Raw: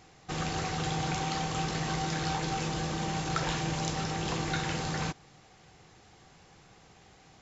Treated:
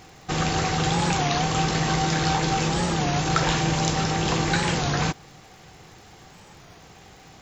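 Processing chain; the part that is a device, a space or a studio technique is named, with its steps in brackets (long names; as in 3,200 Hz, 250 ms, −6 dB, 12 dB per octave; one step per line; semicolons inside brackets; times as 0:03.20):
warped LP (wow of a warped record 33 1/3 rpm, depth 160 cents; surface crackle 84 per second −54 dBFS; pink noise bed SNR 40 dB)
level +9 dB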